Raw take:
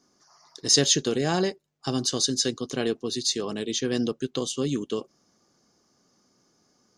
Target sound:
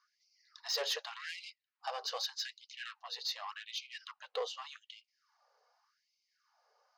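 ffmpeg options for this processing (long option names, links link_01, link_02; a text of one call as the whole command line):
ffmpeg -i in.wav -af "aphaser=in_gain=1:out_gain=1:delay=4.1:decay=0.22:speed=0.79:type=sinusoidal,highpass=280,equalizer=frequency=330:width_type=q:width=4:gain=-7,equalizer=frequency=890:width_type=q:width=4:gain=5,equalizer=frequency=2200:width_type=q:width=4:gain=-3,equalizer=frequency=3400:width_type=q:width=4:gain=-8,lowpass=frequency=4000:width=0.5412,lowpass=frequency=4000:width=1.3066,asoftclip=type=tanh:threshold=-26dB,afftfilt=real='re*gte(b*sr/1024,410*pow(2100/410,0.5+0.5*sin(2*PI*0.85*pts/sr)))':imag='im*gte(b*sr/1024,410*pow(2100/410,0.5+0.5*sin(2*PI*0.85*pts/sr)))':win_size=1024:overlap=0.75,volume=-1.5dB" out.wav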